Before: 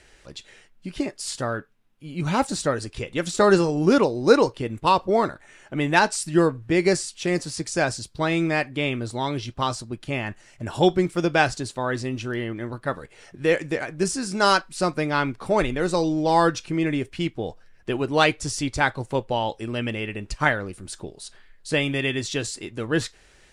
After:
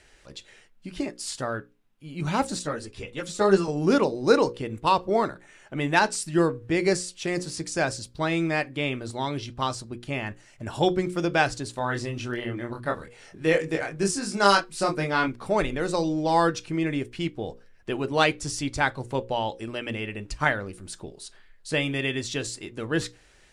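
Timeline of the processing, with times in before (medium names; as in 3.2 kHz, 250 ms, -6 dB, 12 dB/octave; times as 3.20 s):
2.59–3.68 s: three-phase chorus
11.71–15.28 s: doubling 25 ms -3 dB
whole clip: hum notches 60/120/180/240/300/360/420/480/540 Hz; trim -2.5 dB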